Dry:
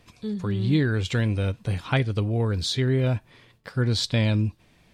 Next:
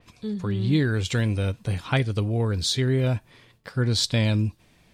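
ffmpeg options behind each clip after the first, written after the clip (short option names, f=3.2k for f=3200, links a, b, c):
-af "adynamicequalizer=threshold=0.00794:dfrequency=4900:dqfactor=0.7:tfrequency=4900:tqfactor=0.7:attack=5:release=100:ratio=0.375:range=3.5:mode=boostabove:tftype=highshelf"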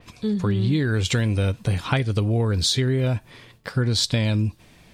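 -af "acompressor=threshold=-25dB:ratio=6,volume=7dB"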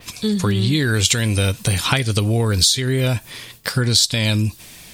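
-af "crystalizer=i=5.5:c=0,acompressor=threshold=-17dB:ratio=6,volume=4dB"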